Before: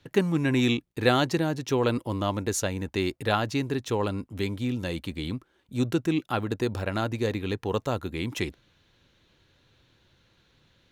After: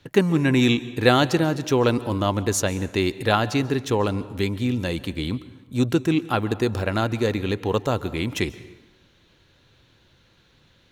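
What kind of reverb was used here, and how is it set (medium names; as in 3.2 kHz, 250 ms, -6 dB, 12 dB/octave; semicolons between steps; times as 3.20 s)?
plate-style reverb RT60 1.1 s, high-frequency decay 0.65×, pre-delay 120 ms, DRR 16.5 dB; trim +5 dB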